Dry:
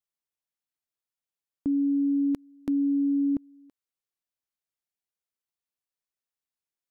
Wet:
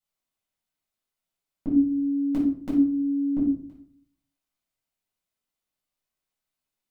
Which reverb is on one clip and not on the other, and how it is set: simulated room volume 560 m³, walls furnished, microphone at 7.2 m; trim -3.5 dB

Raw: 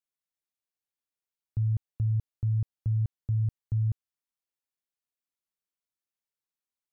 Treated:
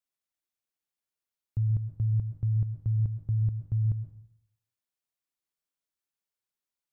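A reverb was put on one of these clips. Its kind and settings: plate-style reverb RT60 0.67 s, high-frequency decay 0.95×, pre-delay 100 ms, DRR 9.5 dB

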